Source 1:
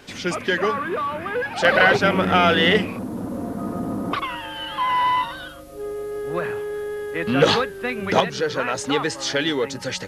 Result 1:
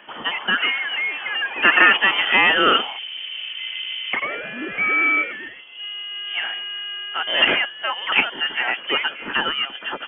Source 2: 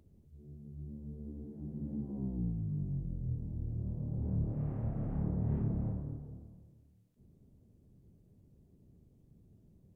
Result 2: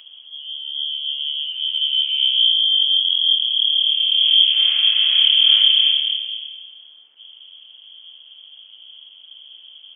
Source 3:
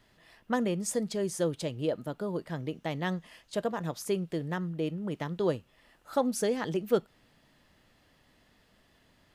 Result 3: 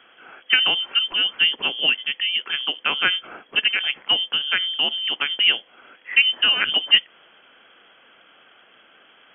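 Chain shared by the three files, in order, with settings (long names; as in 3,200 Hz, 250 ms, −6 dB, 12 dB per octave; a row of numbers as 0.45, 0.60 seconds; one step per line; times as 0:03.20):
voice inversion scrambler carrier 3,300 Hz
three-way crossover with the lows and the highs turned down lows −22 dB, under 210 Hz, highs −18 dB, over 2,500 Hz
normalise the peak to −2 dBFS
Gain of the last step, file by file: +5.0, +27.5, +17.0 decibels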